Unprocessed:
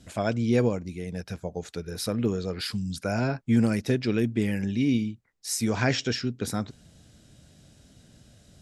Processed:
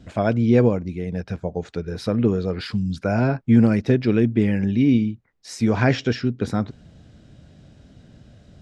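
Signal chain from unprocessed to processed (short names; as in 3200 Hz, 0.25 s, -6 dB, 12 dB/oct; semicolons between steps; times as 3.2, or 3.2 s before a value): tape spacing loss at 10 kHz 22 dB; gain +7.5 dB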